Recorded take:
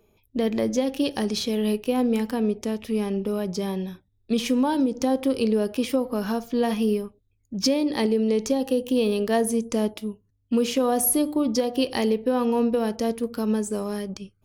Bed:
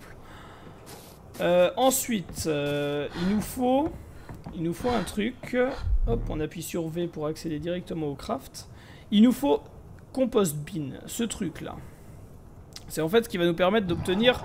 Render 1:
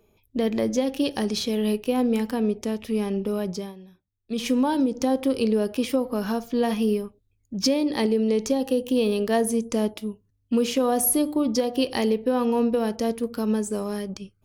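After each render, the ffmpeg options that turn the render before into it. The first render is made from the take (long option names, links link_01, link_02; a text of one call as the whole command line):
ffmpeg -i in.wav -filter_complex "[0:a]asplit=3[link_01][link_02][link_03];[link_01]atrim=end=3.74,asetpts=PTS-STARTPTS,afade=type=out:start_time=3.49:duration=0.25:silence=0.16788[link_04];[link_02]atrim=start=3.74:end=4.23,asetpts=PTS-STARTPTS,volume=-15.5dB[link_05];[link_03]atrim=start=4.23,asetpts=PTS-STARTPTS,afade=type=in:duration=0.25:silence=0.16788[link_06];[link_04][link_05][link_06]concat=n=3:v=0:a=1" out.wav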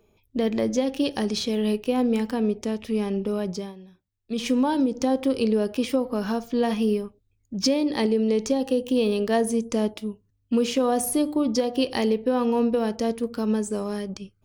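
ffmpeg -i in.wav -af "equalizer=frequency=12000:width_type=o:width=0.25:gain=-14" out.wav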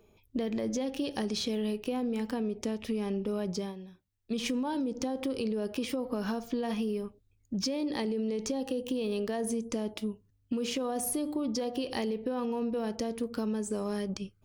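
ffmpeg -i in.wav -af "alimiter=limit=-18dB:level=0:latency=1:release=16,acompressor=threshold=-29dB:ratio=6" out.wav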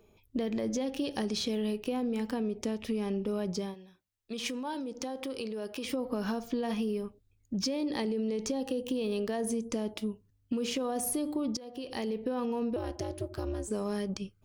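ffmpeg -i in.wav -filter_complex "[0:a]asettb=1/sr,asplit=3[link_01][link_02][link_03];[link_01]atrim=end=3.744[link_04];[link_02]atrim=start=3.74:end=5.85,asetpts=PTS-STARTPTS,afade=type=in:duration=0.004:curve=qsin,afade=type=out:start_time=2.106:duration=0.004:curve=qsin,lowshelf=frequency=350:gain=-10[link_05];[link_03]atrim=start=5.846[link_06];[link_04][link_05]acrossfade=duration=0.004:curve1=hsin:curve2=qsin[link_07];[link_07][link_06]acrossfade=duration=0.004:curve1=qsin:curve2=hsin,asettb=1/sr,asplit=3[link_08][link_09][link_10];[link_08]atrim=end=12.764[link_11];[link_09]atrim=start=12.76:end=13.68,asetpts=PTS-STARTPTS,afade=type=in:duration=0.004:curve=qsin,afade=type=out:start_time=0.916:duration=0.004:curve=qsin,aeval=exprs='val(0)*sin(2*PI*140*n/s)':channel_layout=same[link_12];[link_10]atrim=start=13.676[link_13];[link_11][link_12]acrossfade=duration=0.004:curve1=hsin:curve2=qsin[link_14];[link_14][link_13]acrossfade=duration=0.004:curve1=qsin:curve2=hsin,asplit=2[link_15][link_16];[link_15]atrim=end=11.57,asetpts=PTS-STARTPTS,afade=type=out:start_time=11.566:duration=0.004:curve=hsin:silence=0.133352[link_17];[link_16]atrim=start=11.57,asetpts=PTS-STARTPTS,afade=type=in:duration=0.62:silence=0.133352[link_18];[link_17][link_18]concat=n=2:v=0:a=1" out.wav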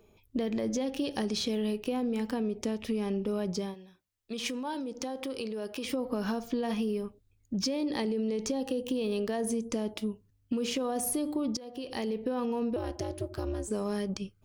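ffmpeg -i in.wav -af "volume=1dB" out.wav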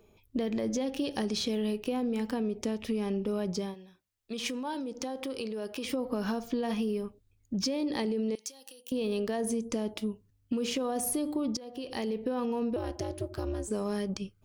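ffmpeg -i in.wav -filter_complex "[0:a]asettb=1/sr,asplit=3[link_01][link_02][link_03];[link_01]atrim=end=8.354[link_04];[link_02]atrim=start=8.35:end=8.92,asetpts=PTS-STARTPTS,afade=type=in:duration=0.004:curve=qsin,afade=type=out:start_time=0.566:duration=0.004:curve=qsin,aderivative[link_05];[link_03]atrim=start=8.916[link_06];[link_04][link_05]acrossfade=duration=0.004:curve1=hsin:curve2=qsin[link_07];[link_07][link_06]acrossfade=duration=0.004:curve1=qsin:curve2=hsin" out.wav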